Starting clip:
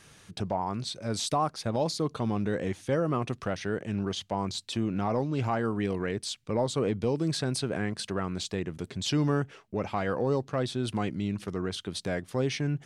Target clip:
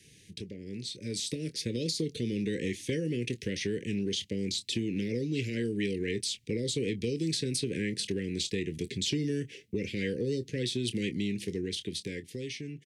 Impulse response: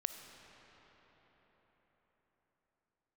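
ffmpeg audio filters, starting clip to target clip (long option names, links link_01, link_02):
-filter_complex "[0:a]asuperstop=centerf=950:order=12:qfactor=0.67,asplit=2[link_01][link_02];[link_02]adelay=25,volume=-12.5dB[link_03];[link_01][link_03]amix=inputs=2:normalize=0,acrossover=split=250|1600[link_04][link_05][link_06];[link_04]acompressor=threshold=-43dB:ratio=4[link_07];[link_05]acompressor=threshold=-39dB:ratio=4[link_08];[link_06]acompressor=threshold=-37dB:ratio=4[link_09];[link_07][link_08][link_09]amix=inputs=3:normalize=0,highpass=51,dynaudnorm=framelen=110:gausssize=21:maxgain=8dB,volume=-2dB"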